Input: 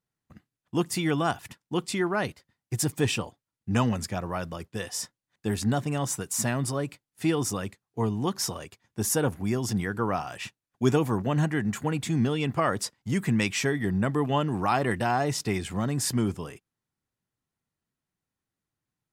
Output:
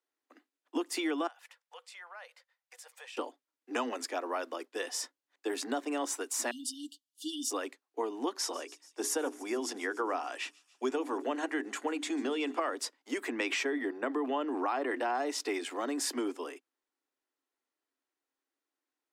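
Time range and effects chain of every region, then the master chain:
0:01.27–0:03.17: Chebyshev high-pass with heavy ripple 490 Hz, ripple 3 dB + parametric band 670 Hz −8 dB 0.32 octaves + downward compressor 2.5 to 1, threshold −52 dBFS
0:06.51–0:07.51: linear-phase brick-wall band-stop 300–2,800 Hz + comb filter 5.6 ms, depth 70%
0:08.38–0:12.75: low-pass filter 12,000 Hz 24 dB per octave + mains-hum notches 60/120/180/240/300/360/420 Hz + delay with a high-pass on its return 144 ms, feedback 69%, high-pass 4,400 Hz, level −18 dB
0:13.28–0:15.15: high-shelf EQ 3,700 Hz −9 dB + level that may fall only so fast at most 22 dB per second
whole clip: Butterworth high-pass 260 Hz 96 dB per octave; high-shelf EQ 8,400 Hz −9 dB; downward compressor, threshold −29 dBFS

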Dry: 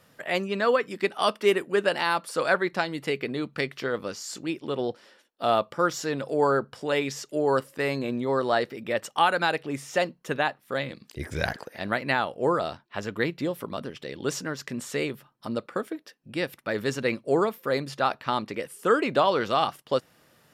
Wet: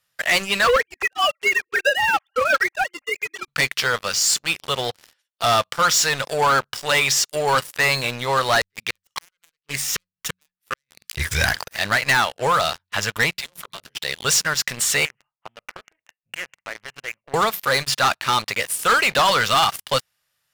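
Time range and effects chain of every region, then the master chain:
0:00.67–0:03.48: three sine waves on the formant tracks + comb filter 3.7 ms, depth 72%
0:08.61–0:11.35: phase distortion by the signal itself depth 0.32 ms + gate with flip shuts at −19 dBFS, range −37 dB + Butterworth band-reject 690 Hz, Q 1.5
0:13.33–0:13.97: all-pass dispersion lows, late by 65 ms, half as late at 350 Hz + downward compressor 4 to 1, threshold −41 dBFS
0:15.05–0:17.34: downward compressor 5 to 1, threshold −34 dBFS + Chebyshev low-pass with heavy ripple 2,900 Hz, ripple 6 dB + highs frequency-modulated by the lows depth 0.19 ms
whole clip: guitar amp tone stack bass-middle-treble 10-0-10; hum removal 91.58 Hz, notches 2; leveller curve on the samples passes 5; level +3 dB

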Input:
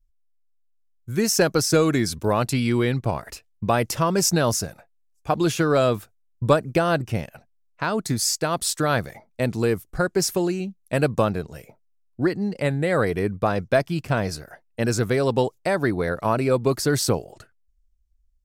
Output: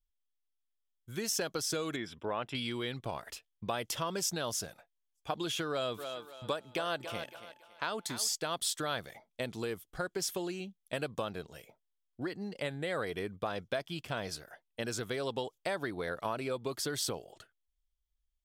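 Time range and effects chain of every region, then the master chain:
0:01.96–0:02.55: Savitzky-Golay smoothing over 25 samples + low-shelf EQ 160 Hz −7 dB
0:05.97–0:08.32: low-shelf EQ 190 Hz −9 dB + steady tone 870 Hz −54 dBFS + feedback echo with a high-pass in the loop 279 ms, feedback 34%, high-pass 280 Hz, level −12 dB
whole clip: parametric band 3,300 Hz +12 dB 0.31 octaves; downward compressor, threshold −21 dBFS; low-shelf EQ 280 Hz −10 dB; level −7.5 dB

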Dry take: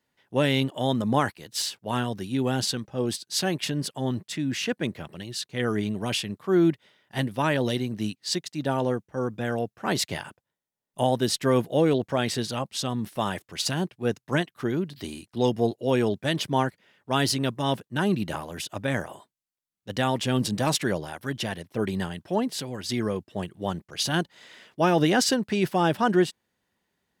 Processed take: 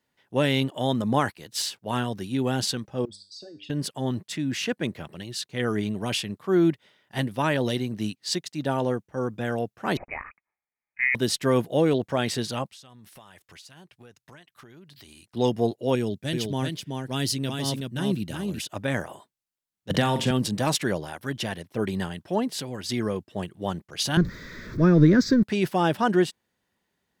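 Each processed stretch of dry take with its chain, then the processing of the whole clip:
0:03.05–0:03.70: spectral envelope exaggerated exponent 3 + downward compressor 5 to 1, threshold −33 dBFS + tuned comb filter 100 Hz, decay 0.46 s, mix 70%
0:09.97–0:11.15: high-pass filter 290 Hz + voice inversion scrambler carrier 2,700 Hz
0:12.67–0:15.25: parametric band 270 Hz −9 dB 2.8 octaves + downward compressor 10 to 1, threshold −45 dBFS
0:15.95–0:18.59: parametric band 1,000 Hz −11 dB 2.3 octaves + single-tap delay 377 ms −4 dB
0:19.90–0:20.31: parametric band 160 Hz +8.5 dB 0.55 octaves + flutter between parallel walls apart 7.5 metres, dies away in 0.27 s + multiband upward and downward compressor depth 100%
0:24.17–0:25.43: converter with a step at zero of −33 dBFS + spectral tilt −3.5 dB per octave + phaser with its sweep stopped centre 2,900 Hz, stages 6
whole clip: no processing

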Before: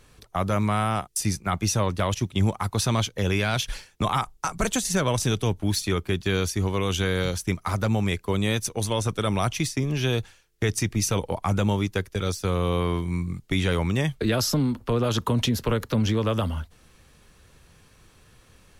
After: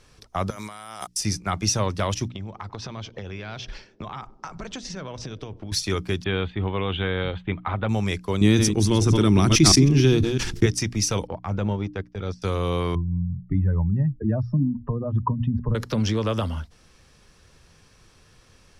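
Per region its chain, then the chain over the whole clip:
0:00.50–0:01.07: RIAA equalisation recording + notch filter 2,600 Hz, Q 7.5 + compressor whose output falls as the input rises −38 dBFS
0:02.28–0:05.72: high-frequency loss of the air 170 metres + downward compressor 12 to 1, threshold −30 dBFS + feedback echo with a band-pass in the loop 97 ms, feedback 83%, band-pass 320 Hz, level −16.5 dB
0:06.24–0:07.89: elliptic low-pass filter 3,500 Hz + parametric band 800 Hz +4.5 dB 0.28 octaves
0:08.41–0:10.66: delay that plays each chunk backwards 164 ms, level −10 dB + low shelf with overshoot 430 Hz +7 dB, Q 3 + level that may fall only so fast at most 40 dB per second
0:11.27–0:12.42: transient designer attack −6 dB, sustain −10 dB + head-to-tape spacing loss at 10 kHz 25 dB
0:12.95–0:15.75: expanding power law on the bin magnitudes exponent 2.1 + low-pass filter 1,600 Hz 24 dB per octave + comb filter 1.1 ms
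whole clip: Bessel low-pass filter 9,100 Hz, order 2; parametric band 5,300 Hz +8 dB 0.33 octaves; mains-hum notches 60/120/180/240/300 Hz

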